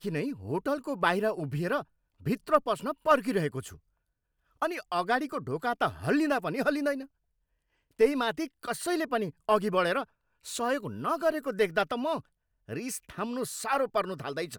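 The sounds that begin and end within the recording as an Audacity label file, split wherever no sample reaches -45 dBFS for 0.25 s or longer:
2.220000	3.760000	sound
4.620000	7.050000	sound
7.990000	10.040000	sound
10.450000	12.200000	sound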